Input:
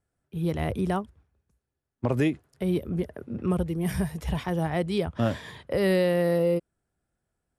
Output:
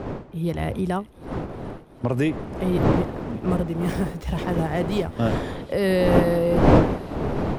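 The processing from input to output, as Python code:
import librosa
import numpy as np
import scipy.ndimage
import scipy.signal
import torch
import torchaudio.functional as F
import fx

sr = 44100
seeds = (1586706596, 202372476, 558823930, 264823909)

y = fx.dmg_wind(x, sr, seeds[0], corner_hz=450.0, level_db=-27.0)
y = fx.echo_wet_highpass(y, sr, ms=371, feedback_pct=76, hz=3200.0, wet_db=-16.0)
y = fx.running_max(y, sr, window=3, at=(2.9, 5.16))
y = y * 10.0 ** (2.0 / 20.0)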